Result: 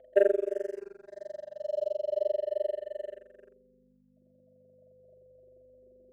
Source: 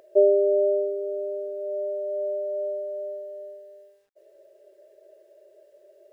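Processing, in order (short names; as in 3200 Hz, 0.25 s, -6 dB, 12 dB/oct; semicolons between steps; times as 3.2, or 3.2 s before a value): AM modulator 23 Hz, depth 95%; reverb removal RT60 1.7 s; dynamic EQ 340 Hz, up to +5 dB, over -41 dBFS, Q 1.6; hum 50 Hz, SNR 18 dB; band-pass sweep 680 Hz -> 320 Hz, 2.79–3.88; sample leveller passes 1; whine 510 Hz -58 dBFS; endless phaser -0.34 Hz; gain +2.5 dB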